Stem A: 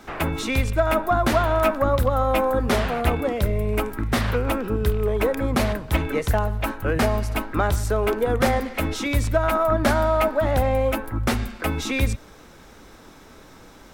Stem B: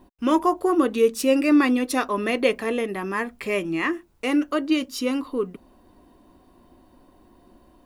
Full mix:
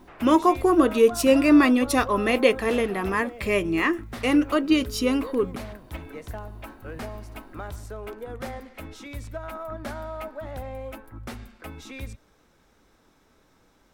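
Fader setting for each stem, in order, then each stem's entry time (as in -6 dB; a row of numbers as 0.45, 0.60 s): -15.0, +1.5 dB; 0.00, 0.00 s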